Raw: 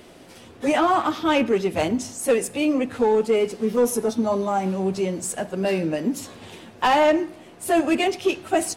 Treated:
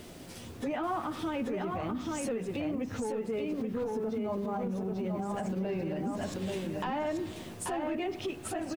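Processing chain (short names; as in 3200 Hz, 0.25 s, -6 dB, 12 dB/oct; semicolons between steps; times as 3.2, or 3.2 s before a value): 3.99–6.34 reverse delay 0.454 s, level -5 dB; tone controls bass +8 dB, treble +5 dB; treble ducked by the level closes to 2400 Hz, closed at -18.5 dBFS; bit-crush 9-bit; compressor 6:1, threshold -25 dBFS, peak gain reduction 11.5 dB; echo 0.835 s -4 dB; limiter -22.5 dBFS, peak gain reduction 8.5 dB; gain -3.5 dB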